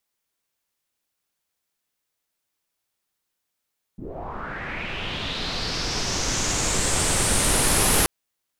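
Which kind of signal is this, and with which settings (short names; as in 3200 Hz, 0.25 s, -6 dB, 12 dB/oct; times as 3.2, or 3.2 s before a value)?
swept filtered noise pink, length 4.08 s lowpass, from 160 Hz, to 11000 Hz, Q 3.8, linear, gain ramp +16 dB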